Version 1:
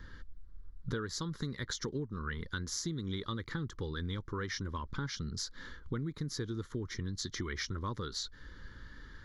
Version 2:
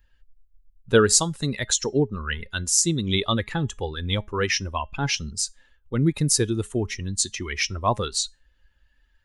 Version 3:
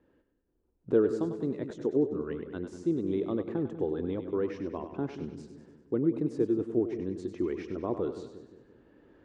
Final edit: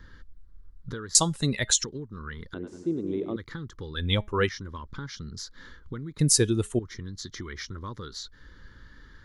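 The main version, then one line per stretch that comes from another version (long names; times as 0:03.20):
1
0:01.15–0:01.84: punch in from 2
0:02.54–0:03.36: punch in from 3
0:03.95–0:04.49: punch in from 2
0:06.19–0:06.79: punch in from 2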